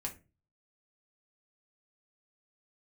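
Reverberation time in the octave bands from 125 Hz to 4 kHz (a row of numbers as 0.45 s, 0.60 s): 0.55 s, 0.45 s, 0.35 s, 0.25 s, 0.25 s, 0.20 s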